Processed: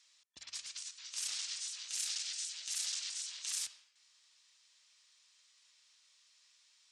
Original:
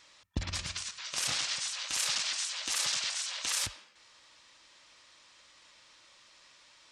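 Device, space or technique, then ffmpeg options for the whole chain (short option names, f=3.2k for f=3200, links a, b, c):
piezo pickup straight into a mixer: -filter_complex "[0:a]lowpass=8.8k,aderivative,asettb=1/sr,asplit=3[a][b][c];[a]atrim=end=1.904[d];[b]atrim=start=1.9:end=2.91,asetpts=PTS-STARTPTS,afade=t=in:d=0.004:c=qsin,afade=t=out:st=1.006:d=0.004:c=qsin,bandreject=f=1.1k:w=5.7[e];[c]atrim=start=2.906[f];[d][e]acrossfade=d=0.004:c1=hsin:c2=qsin[g];[g][f]acrossfade=d=0.004:c1=qsin:c2=hsin,volume=-3dB"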